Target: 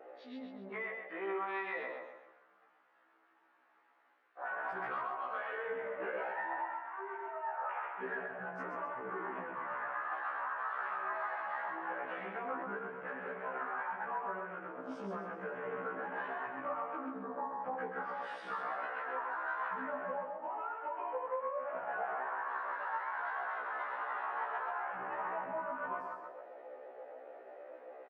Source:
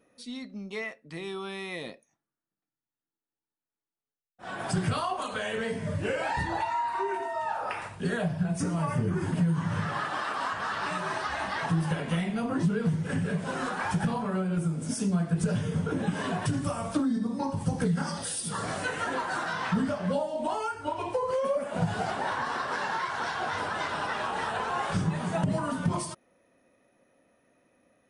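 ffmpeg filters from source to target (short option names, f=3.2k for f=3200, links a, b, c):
-filter_complex "[0:a]aeval=exprs='val(0)+0.5*0.00841*sgn(val(0))':c=same,highpass=510,afwtdn=0.00708,lowpass=f=1.7k:w=0.5412,lowpass=f=1.7k:w=1.3066,aemphasis=mode=production:type=riaa,acompressor=threshold=-44dB:ratio=6,asplit=2[a][b];[b]aecho=0:1:131|262|393|524|655:0.562|0.214|0.0812|0.0309|0.0117[c];[a][c]amix=inputs=2:normalize=0,afftfilt=real='re*1.73*eq(mod(b,3),0)':imag='im*1.73*eq(mod(b,3),0)':win_size=2048:overlap=0.75,volume=8dB"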